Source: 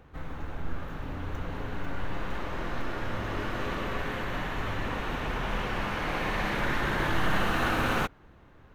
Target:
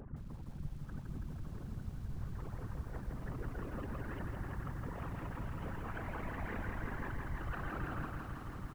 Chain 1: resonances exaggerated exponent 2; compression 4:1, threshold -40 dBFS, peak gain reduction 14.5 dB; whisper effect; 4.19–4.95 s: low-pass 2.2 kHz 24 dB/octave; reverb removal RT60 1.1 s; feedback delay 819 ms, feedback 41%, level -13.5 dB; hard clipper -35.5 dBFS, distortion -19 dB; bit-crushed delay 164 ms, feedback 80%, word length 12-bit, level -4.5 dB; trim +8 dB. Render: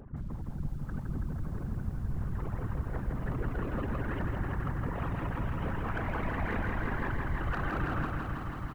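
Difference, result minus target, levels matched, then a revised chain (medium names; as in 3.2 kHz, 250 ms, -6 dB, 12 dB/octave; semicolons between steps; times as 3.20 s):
compression: peak gain reduction -8 dB
resonances exaggerated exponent 2; compression 4:1, threshold -51 dBFS, peak gain reduction 22.5 dB; whisper effect; 4.19–4.95 s: low-pass 2.2 kHz 24 dB/octave; reverb removal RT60 1.1 s; feedback delay 819 ms, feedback 41%, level -13.5 dB; hard clipper -35.5 dBFS, distortion -120 dB; bit-crushed delay 164 ms, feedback 80%, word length 12-bit, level -4.5 dB; trim +8 dB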